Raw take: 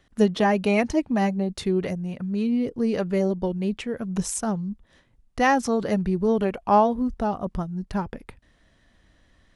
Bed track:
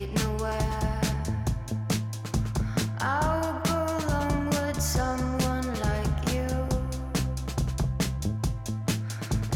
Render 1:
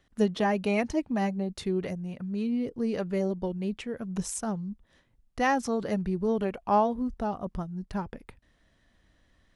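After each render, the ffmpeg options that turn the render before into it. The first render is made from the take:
-af "volume=0.531"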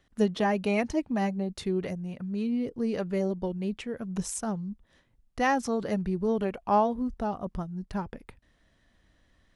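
-af anull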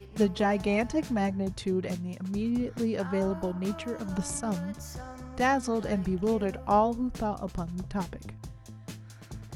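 -filter_complex "[1:a]volume=0.188[s0];[0:a][s0]amix=inputs=2:normalize=0"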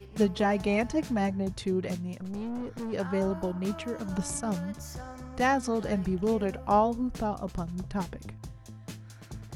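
-filter_complex "[0:a]asettb=1/sr,asplit=3[s0][s1][s2];[s0]atrim=end=2.174[s3];[s1]atrim=start=2.17:end=2.93,asetpts=PTS-STARTPTS,afade=t=in:d=0.004:c=qsin,afade=t=out:st=0.756:d=0.004:c=qsin,aeval=exprs='(tanh(39.8*val(0)+0.4)-tanh(0.4))/39.8':c=same[s4];[s2]atrim=start=2.926[s5];[s3][s4]acrossfade=d=0.004:c1=hsin:c2=qsin[s6];[s6][s5]acrossfade=d=0.004:c1=qsin:c2=hsin"

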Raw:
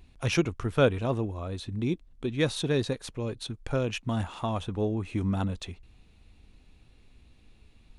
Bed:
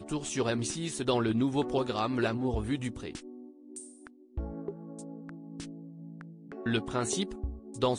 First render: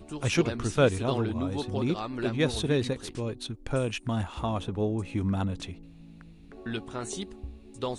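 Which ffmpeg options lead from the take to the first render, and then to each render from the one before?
-filter_complex "[1:a]volume=0.596[s0];[0:a][s0]amix=inputs=2:normalize=0"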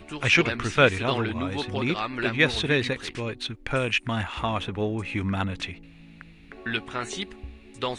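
-filter_complex "[0:a]acrossover=split=7600[s0][s1];[s1]acompressor=threshold=0.002:ratio=4:attack=1:release=60[s2];[s0][s2]amix=inputs=2:normalize=0,equalizer=f=2100:w=0.82:g=14.5"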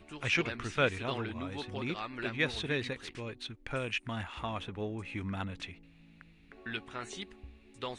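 -af "volume=0.316"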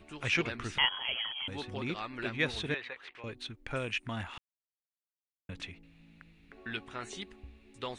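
-filter_complex "[0:a]asettb=1/sr,asplit=3[s0][s1][s2];[s0]atrim=end=0.784[s3];[s1]atrim=start=0.78:end=1.48,asetpts=PTS-STARTPTS,afade=t=in:d=0.004:c=qsin,afade=t=out:st=0.696:d=0.004:c=qsin,lowpass=f=2900:t=q:w=0.5098,lowpass=f=2900:t=q:w=0.6013,lowpass=f=2900:t=q:w=0.9,lowpass=f=2900:t=q:w=2.563,afreqshift=-3400[s4];[s2]atrim=start=1.476[s5];[s3][s4]acrossfade=d=0.004:c1=hsin:c2=qsin[s6];[s6][s5]acrossfade=d=0.004:c1=qsin:c2=hsin,asettb=1/sr,asplit=3[s7][s8][s9];[s7]atrim=end=2.744[s10];[s8]atrim=start=2.74:end=3.24,asetpts=PTS-STARTPTS,afade=t=in:d=0.004:c=qsin,afade=t=out:st=0.496:d=0.004:c=qsin,acrossover=split=570 3400:gain=0.0631 1 0.1[s11][s12][s13];[s11][s12][s13]amix=inputs=3:normalize=0[s14];[s9]atrim=start=3.236[s15];[s10][s14]acrossfade=d=0.004:c1=hsin:c2=qsin[s16];[s16][s15]acrossfade=d=0.004:c1=qsin:c2=hsin,asplit=3[s17][s18][s19];[s17]atrim=end=4.38,asetpts=PTS-STARTPTS,afade=t=out:st=4.376:d=0.004:c=hsin[s20];[s18]atrim=start=4.38:end=5.49,asetpts=PTS-STARTPTS,volume=0[s21];[s19]atrim=start=5.49,asetpts=PTS-STARTPTS,afade=t=in:d=0.004:c=hsin[s22];[s20][s21][s22]concat=n=3:v=0:a=1"

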